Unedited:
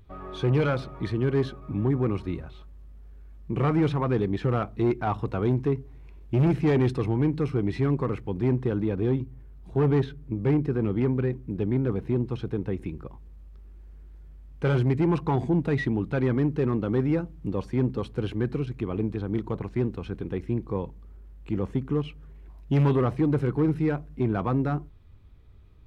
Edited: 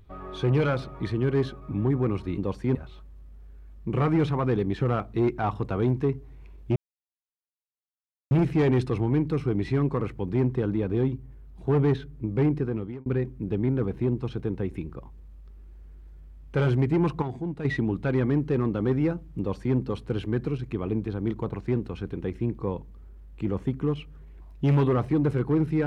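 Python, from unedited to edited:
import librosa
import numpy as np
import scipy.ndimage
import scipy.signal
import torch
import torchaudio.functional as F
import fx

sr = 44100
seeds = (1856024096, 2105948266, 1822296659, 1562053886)

y = fx.edit(x, sr, fx.insert_silence(at_s=6.39, length_s=1.55),
    fx.fade_out_span(start_s=10.65, length_s=0.49),
    fx.clip_gain(start_s=15.3, length_s=0.43, db=-8.0),
    fx.duplicate(start_s=17.47, length_s=0.37, to_s=2.38), tone=tone)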